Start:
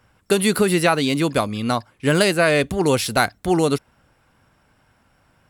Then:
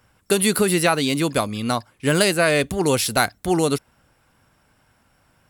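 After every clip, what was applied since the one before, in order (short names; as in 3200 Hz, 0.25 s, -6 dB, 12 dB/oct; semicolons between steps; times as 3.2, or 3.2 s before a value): high shelf 5800 Hz +7 dB; gain -1.5 dB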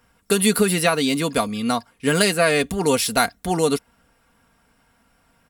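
comb 4.3 ms, depth 54%; gain -1 dB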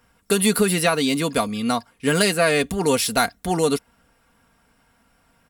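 soft clip -5.5 dBFS, distortion -25 dB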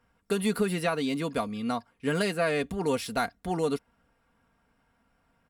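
high shelf 3900 Hz -11 dB; gain -7.5 dB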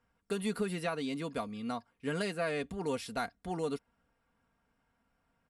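LPF 11000 Hz 24 dB/oct; gain -7 dB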